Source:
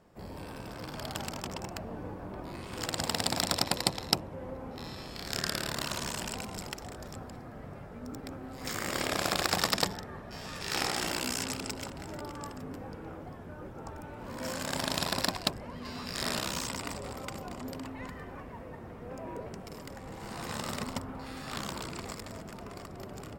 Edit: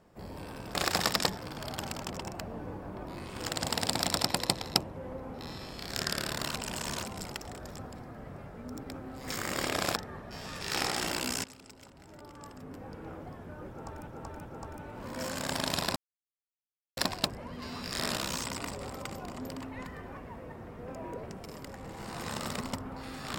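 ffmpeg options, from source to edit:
-filter_complex "[0:a]asplit=10[a][b][c][d][e][f][g][h][i][j];[a]atrim=end=0.752[k];[b]atrim=start=9.328:end=9.962[l];[c]atrim=start=0.748:end=5.922[m];[d]atrim=start=5.918:end=6.412,asetpts=PTS-STARTPTS,areverse[n];[e]atrim=start=6.408:end=9.332[o];[f]atrim=start=9.958:end=11.44,asetpts=PTS-STARTPTS,afade=t=out:st=1.478:d=0.004:c=hsin:silence=0.158489[p];[g]atrim=start=11.44:end=14.072,asetpts=PTS-STARTPTS,afade=t=in:d=1.65:c=qua:silence=0.158489[q];[h]atrim=start=13.688:end=14.072[r];[i]atrim=start=13.688:end=15.2,asetpts=PTS-STARTPTS,afade=t=out:st=1.508:d=0.004:c=hsin,apad=pad_dur=1.01[s];[j]atrim=start=15.2,asetpts=PTS-STARTPTS,afade=t=in:d=0.004:c=hsin[t];[k][l]acrossfade=d=0.004:c1=hsin:c2=hsin[u];[u][m]acrossfade=d=0.004:c1=hsin:c2=hsin[v];[v][n]acrossfade=d=0.004:c1=hsin:c2=hsin[w];[w][o]acrossfade=d=0.004:c1=hsin:c2=hsin[x];[p][q]concat=n=2:v=0:a=1[y];[x][y]acrossfade=d=0.004:c1=hsin:c2=hsin[z];[z][r]acrossfade=d=0.004:c1=hsin:c2=hsin[aa];[s][t]concat=n=2:v=0:a=1[ab];[aa][ab]acrossfade=d=0.004:c1=hsin:c2=hsin"

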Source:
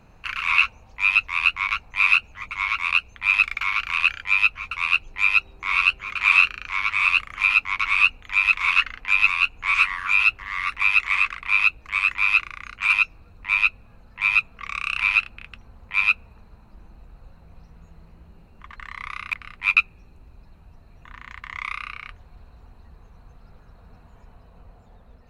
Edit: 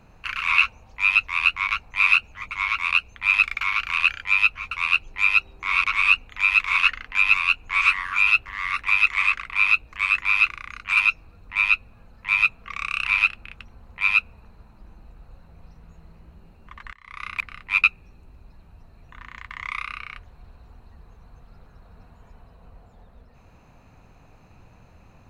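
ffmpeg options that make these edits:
-filter_complex "[0:a]asplit=3[a][b][c];[a]atrim=end=5.842[d];[b]atrim=start=7.768:end=18.86,asetpts=PTS-STARTPTS,afade=t=out:st=11.088:d=0.004:c=hsin:silence=0.112202[e];[c]atrim=start=18.86,asetpts=PTS-STARTPTS,afade=t=in:d=0.31:c=qua:silence=0.112202[f];[e][f]concat=n=2:v=0:a=1[g];[d][g]acrossfade=d=0.004:c1=hsin:c2=hsin"

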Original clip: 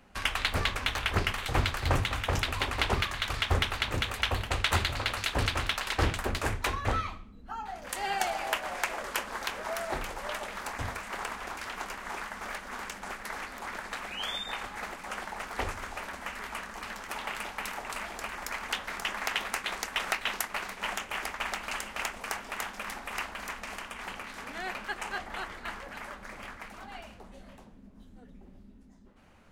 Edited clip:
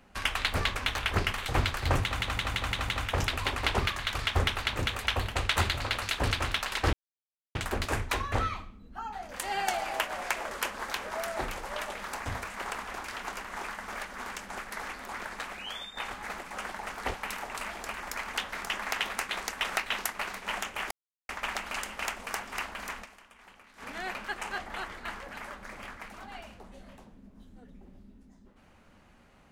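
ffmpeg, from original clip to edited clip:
-filter_complex "[0:a]asplit=13[a][b][c][d][e][f][g][h][i][j][k][l][m];[a]atrim=end=2.202[n];[b]atrim=start=2.028:end=2.202[o];[c]atrim=start=2.028:end=2.202[p];[d]atrim=start=2.028:end=2.202[q];[e]atrim=start=2.028:end=2.202[r];[f]atrim=start=2.028:end=6.08,asetpts=PTS-STARTPTS,afade=t=out:st=4.048:d=0.004:c=hsin,apad=pad_dur=0.62[s];[g]atrim=start=6.08:end=14.5,asetpts=PTS-STARTPTS,afade=t=in:d=0.004:c=hsin,afade=t=out:st=7.83:d=0.59:silence=0.334965[t];[h]atrim=start=14.5:end=15.672,asetpts=PTS-STARTPTS,afade=t=in:d=0.004:c=hsin:silence=0.334965[u];[i]atrim=start=17.488:end=21.26,asetpts=PTS-STARTPTS,afade=t=out:st=3.768:d=0.004:c=hsin,apad=pad_dur=0.38[v];[j]atrim=start=21.26:end=22.492,asetpts=PTS-STARTPTS,afade=t=in:d=0.004:c=hsin[w];[k]atrim=start=23.118:end=23.89,asetpts=PTS-STARTPTS,afade=t=out:st=0.502:d=0.27:c=exp:silence=0.177828[x];[l]atrim=start=23.89:end=24.16,asetpts=PTS-STARTPTS,volume=-15dB[y];[m]atrim=start=24.16,asetpts=PTS-STARTPTS,afade=t=in:d=0.27:c=exp:silence=0.177828[z];[n][o]acrossfade=d=0.004:c1=hsin:c2=hsin[aa];[aa][p]acrossfade=d=0.004:c1=hsin:c2=hsin[ab];[ab][q]acrossfade=d=0.004:c1=hsin:c2=hsin[ac];[ac][r]acrossfade=d=0.004:c1=hsin:c2=hsin[ad];[s][t][u]concat=n=3:v=0:a=1[ae];[ad][ae]acrossfade=d=0.004:c1=hsin:c2=hsin[af];[v][w]concat=n=2:v=0:a=1[ag];[af][ag]acrossfade=d=0.004:c1=hsin:c2=hsin[ah];[x][y][z]concat=n=3:v=0:a=1[ai];[ah][ai]acrossfade=d=0.004:c1=hsin:c2=hsin"

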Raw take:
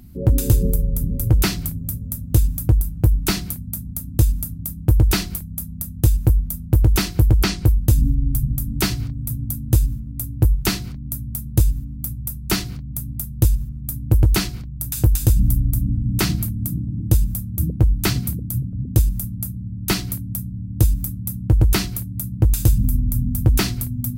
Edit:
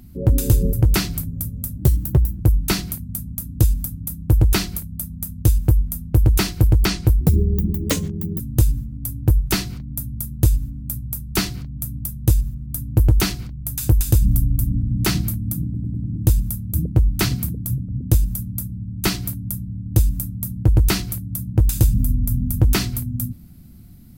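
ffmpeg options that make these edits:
-filter_complex "[0:a]asplit=9[a][b][c][d][e][f][g][h][i];[a]atrim=end=0.732[j];[b]atrim=start=1.208:end=2.264[k];[c]atrim=start=2.26:end=2.98,asetpts=PTS-STARTPTS,asetrate=51597,aresample=44100,atrim=end_sample=27138,asetpts=PTS-STARTPTS[l];[d]atrim=start=2.976:end=7.794[m];[e]atrim=start=7.79:end=9.54,asetpts=PTS-STARTPTS,asetrate=64827,aresample=44100[n];[f]atrim=start=9.536:end=16.892[o];[g]atrim=start=16.788:end=16.892[p];[h]atrim=start=16.788:end=16.892[q];[i]atrim=start=16.788[r];[j][k]acrossfade=d=0.004:c1=hsin:c2=hsin[s];[s][l]acrossfade=d=0.004:c1=hsin:c2=hsin[t];[t][m]acrossfade=d=0.004:c1=hsin:c2=hsin[u];[u][n]acrossfade=d=0.004:c1=hsin:c2=hsin[v];[v][o]acrossfade=d=0.004:c1=hsin:c2=hsin[w];[w][p]acrossfade=d=0.004:c1=hsin:c2=hsin[x];[x][q]acrossfade=d=0.004:c1=hsin:c2=hsin[y];[y][r]acrossfade=d=0.004:c1=hsin:c2=hsin"

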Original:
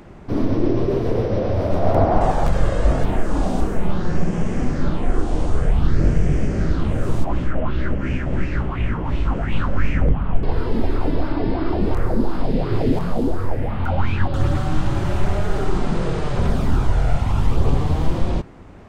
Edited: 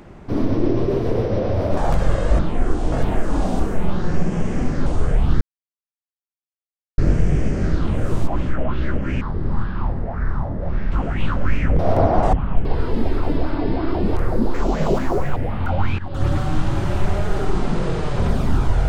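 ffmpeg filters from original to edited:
-filter_complex "[0:a]asplit=13[a][b][c][d][e][f][g][h][i][j][k][l][m];[a]atrim=end=1.772[n];[b]atrim=start=2.308:end=2.932[o];[c]atrim=start=4.868:end=5.402[p];[d]atrim=start=2.928:end=4.872[q];[e]atrim=start=5.398:end=5.95,asetpts=PTS-STARTPTS,afade=t=out:st=0.548:d=0.004:c=hsin,apad=pad_dur=1.57[r];[f]atrim=start=5.95:end=8.184,asetpts=PTS-STARTPTS,afade=t=in:d=0.004:c=hsin[s];[g]atrim=start=8.18:end=9.24,asetpts=PTS-STARTPTS,asetrate=27342,aresample=44100[t];[h]atrim=start=9.236:end=10.112[u];[i]atrim=start=1.768:end=2.312[v];[j]atrim=start=10.108:end=12.324[w];[k]atrim=start=12.32:end=13.56,asetpts=PTS-STARTPTS,asetrate=66150,aresample=44100[x];[l]atrim=start=13.556:end=14.18,asetpts=PTS-STARTPTS,afade=t=out:st=0.62:d=0.004:c=hsin:silence=0.133352[y];[m]atrim=start=14.18,asetpts=PTS-STARTPTS,afade=t=in:d=0.29:silence=0.133352[z];[n][o]acrossfade=d=0.004:c1=hsin:c2=hsin[aa];[aa][p]acrossfade=d=0.004:c1=hsin:c2=hsin[ab];[ab][q]acrossfade=d=0.004:c1=hsin:c2=hsin[ac];[r][s]concat=n=2:v=0:a=1[ad];[ac][ad]acrossfade=d=0.004:c1=hsin:c2=hsin[ae];[ae][t]acrossfade=d=0.004:c1=hsin:c2=hsin[af];[af][u]acrossfade=d=0.004:c1=hsin:c2=hsin[ag];[ag][v]acrossfade=d=0.004:c1=hsin:c2=hsin[ah];[ah][w]acrossfade=d=0.004:c1=hsin:c2=hsin[ai];[ai][x]acrossfade=d=0.004:c1=hsin:c2=hsin[aj];[y][z]concat=n=2:v=0:a=1[ak];[aj][ak]acrossfade=d=0.004:c1=hsin:c2=hsin"

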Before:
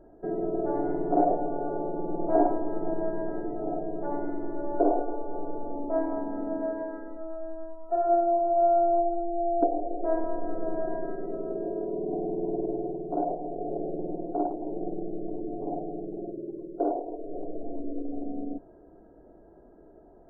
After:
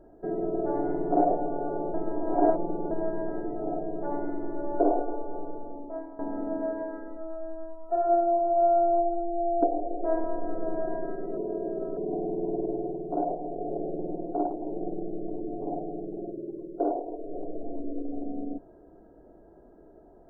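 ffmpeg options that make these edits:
-filter_complex "[0:a]asplit=6[a][b][c][d][e][f];[a]atrim=end=1.942[g];[b]atrim=start=1.938:end=2.912,asetpts=PTS-STARTPTS,areverse[h];[c]atrim=start=2.908:end=6.19,asetpts=PTS-STARTPTS,afade=t=out:st=2.262:d=1.02:silence=0.149624[i];[d]atrim=start=6.19:end=11.372,asetpts=PTS-STARTPTS,afade=t=in:d=0.004:c=hsin:silence=0.149624[j];[e]atrim=start=11.368:end=11.972,asetpts=PTS-STARTPTS,areverse[k];[f]atrim=start=11.968[l];[g][h]acrossfade=d=0.004:c1=hsin:c2=hsin[m];[i][j]concat=n=2:v=0:a=1[n];[m][n]acrossfade=d=0.004:c1=hsin:c2=hsin[o];[o][k]acrossfade=d=0.004:c1=hsin:c2=hsin[p];[p][l]acrossfade=d=0.004:c1=hsin:c2=hsin"

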